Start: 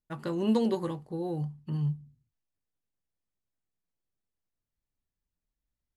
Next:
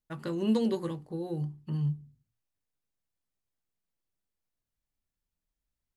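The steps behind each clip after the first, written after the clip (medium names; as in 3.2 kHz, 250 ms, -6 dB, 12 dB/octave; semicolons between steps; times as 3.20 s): hum notches 60/120/180/240/300/360/420 Hz; dynamic bell 820 Hz, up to -6 dB, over -47 dBFS, Q 1.4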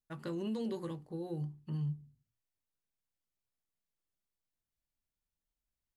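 peak limiter -25 dBFS, peak gain reduction 8 dB; trim -5 dB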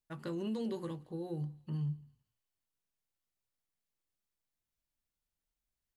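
thinning echo 169 ms, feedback 57%, high-pass 920 Hz, level -22.5 dB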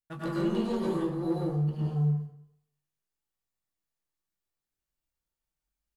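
doubling 21 ms -8 dB; waveshaping leveller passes 2; plate-style reverb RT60 0.74 s, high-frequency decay 0.55×, pre-delay 85 ms, DRR -5.5 dB; trim -3 dB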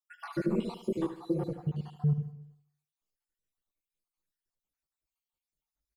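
random holes in the spectrogram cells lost 62%; on a send: feedback delay 75 ms, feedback 47%, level -12 dB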